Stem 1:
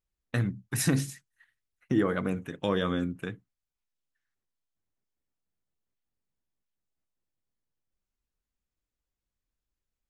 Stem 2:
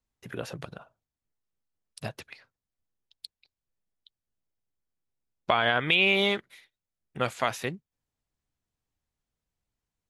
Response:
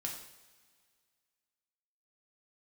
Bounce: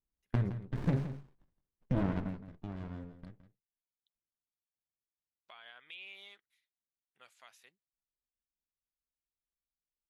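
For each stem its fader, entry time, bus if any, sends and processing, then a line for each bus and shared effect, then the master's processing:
0:02.14 −4 dB → 0:02.43 −15.5 dB, 0.00 s, no send, echo send −12.5 dB, windowed peak hold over 65 samples
−14.0 dB, 0.00 s, no send, no echo send, first difference; automatic ducking −8 dB, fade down 0.25 s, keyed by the first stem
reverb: not used
echo: single-tap delay 166 ms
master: low-pass filter 2,400 Hz 6 dB per octave

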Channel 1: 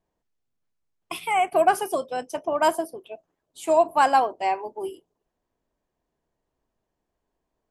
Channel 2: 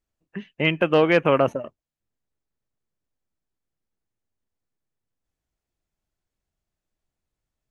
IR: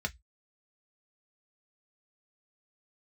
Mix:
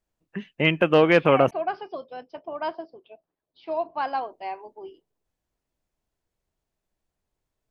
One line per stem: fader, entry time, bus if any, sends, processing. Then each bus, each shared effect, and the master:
−9.0 dB, 0.00 s, no send, Butterworth low-pass 5,100 Hz 96 dB per octave
+0.5 dB, 0.00 s, muted 0:01.51–0:04.13, no send, no processing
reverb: not used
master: no processing

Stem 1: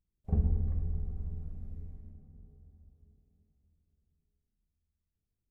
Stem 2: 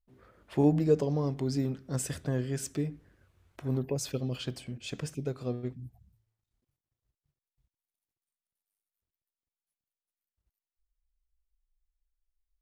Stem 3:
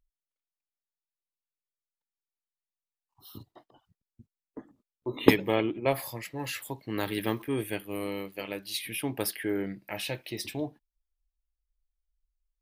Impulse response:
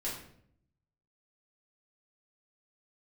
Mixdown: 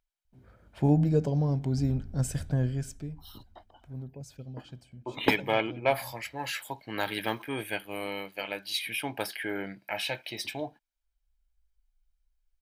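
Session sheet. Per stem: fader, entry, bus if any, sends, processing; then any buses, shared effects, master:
−12.0 dB, 1.45 s, no send, phaser with its sweep stopped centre 510 Hz, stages 6
−3.0 dB, 0.25 s, no send, low-shelf EQ 370 Hz +7.5 dB; automatic ducking −13 dB, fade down 0.55 s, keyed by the third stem
−4.5 dB, 0.00 s, no send, de-essing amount 50%; mid-hump overdrive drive 14 dB, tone 3,900 Hz, clips at −1 dBFS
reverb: not used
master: comb filter 1.3 ms, depth 40%

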